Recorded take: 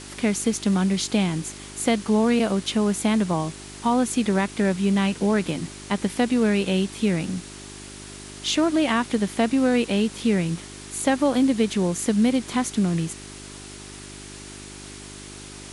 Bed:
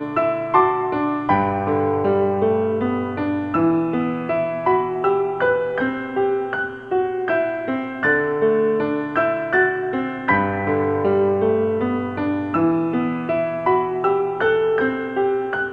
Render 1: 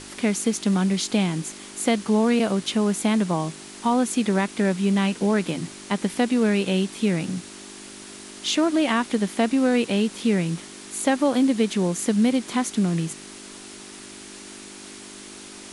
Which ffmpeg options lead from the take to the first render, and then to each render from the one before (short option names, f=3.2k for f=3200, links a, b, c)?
-af "bandreject=f=50:t=h:w=4,bandreject=f=100:t=h:w=4,bandreject=f=150:t=h:w=4"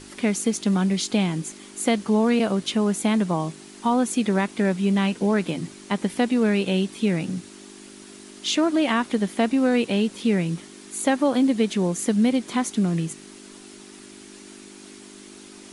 -af "afftdn=nr=6:nf=-41"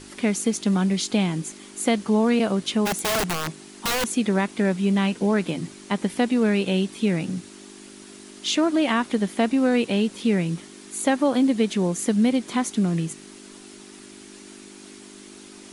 -filter_complex "[0:a]asplit=3[a][b][c];[a]afade=t=out:st=2.85:d=0.02[d];[b]aeval=exprs='(mod(8.91*val(0)+1,2)-1)/8.91':c=same,afade=t=in:st=2.85:d=0.02,afade=t=out:st=4.07:d=0.02[e];[c]afade=t=in:st=4.07:d=0.02[f];[d][e][f]amix=inputs=3:normalize=0"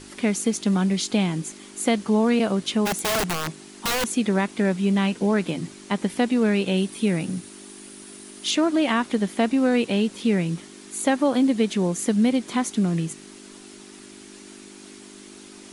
-filter_complex "[0:a]asettb=1/sr,asplit=3[a][b][c];[a]atrim=end=6.774[d];[b]atrim=start=6.77:end=8.51,asetpts=PTS-STARTPTS,afade=t=in:d=0.004:c=qsin,afade=t=out:st=1.736:d=0.004:c=qsin,equalizer=f=9.6k:t=o:w=0.23:g=9.5[e];[c]atrim=start=8.506[f];[d][e]acrossfade=d=0.004:c1=hsin:c2=qsin[g];[g][f]acrossfade=d=0.004:c1=qsin:c2=hsin"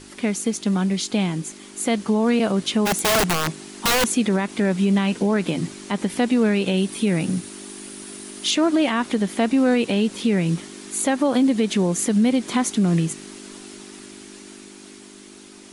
-af "dynaudnorm=f=400:g=11:m=6dB,alimiter=limit=-11.5dB:level=0:latency=1:release=91"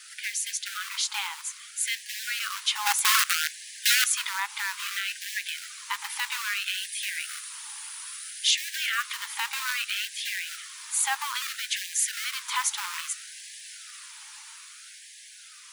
-filter_complex "[0:a]acrossover=split=100|1400|5600[a][b][c][d];[b]acrusher=bits=3:mode=log:mix=0:aa=0.000001[e];[a][e][c][d]amix=inputs=4:normalize=0,afftfilt=real='re*gte(b*sr/1024,790*pow(1600/790,0.5+0.5*sin(2*PI*0.61*pts/sr)))':imag='im*gte(b*sr/1024,790*pow(1600/790,0.5+0.5*sin(2*PI*0.61*pts/sr)))':win_size=1024:overlap=0.75"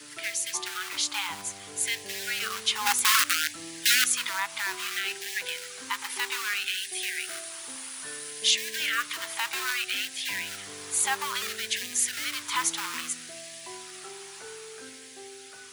-filter_complex "[1:a]volume=-27.5dB[a];[0:a][a]amix=inputs=2:normalize=0"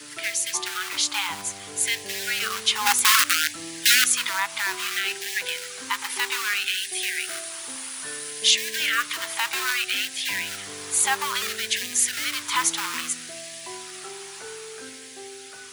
-af "volume=4.5dB,alimiter=limit=-3dB:level=0:latency=1"